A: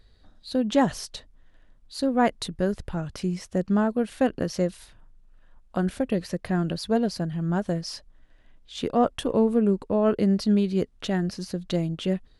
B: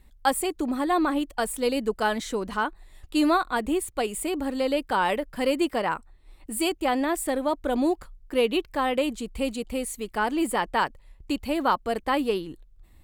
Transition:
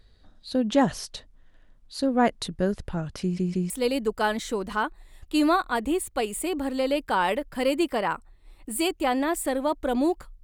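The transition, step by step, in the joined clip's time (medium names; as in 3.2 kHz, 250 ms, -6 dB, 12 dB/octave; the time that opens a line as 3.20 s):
A
3.22 s: stutter in place 0.16 s, 3 plays
3.70 s: go over to B from 1.51 s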